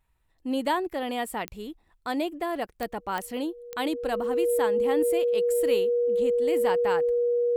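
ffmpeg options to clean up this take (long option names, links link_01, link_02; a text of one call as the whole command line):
ffmpeg -i in.wav -af "adeclick=threshold=4,bandreject=frequency=480:width=30" out.wav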